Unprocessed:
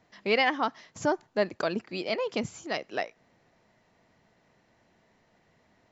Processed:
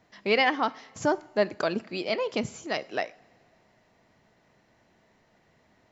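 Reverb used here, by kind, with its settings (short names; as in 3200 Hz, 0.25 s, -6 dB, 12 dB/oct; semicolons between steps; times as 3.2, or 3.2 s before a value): two-slope reverb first 0.53 s, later 2.8 s, from -18 dB, DRR 16.5 dB; gain +1.5 dB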